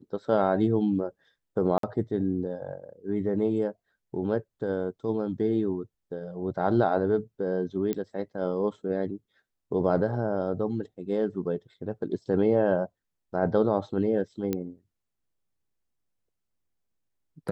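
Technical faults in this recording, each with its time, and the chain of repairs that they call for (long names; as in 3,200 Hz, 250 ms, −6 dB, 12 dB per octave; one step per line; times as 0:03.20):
0:01.78–0:01.83: drop-out 53 ms
0:07.93: click −17 dBFS
0:14.53: click −15 dBFS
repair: click removal
repair the gap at 0:01.78, 53 ms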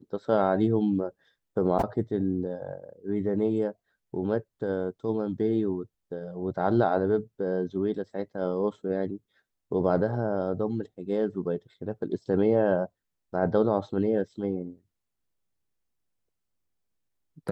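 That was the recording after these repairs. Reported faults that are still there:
none of them is left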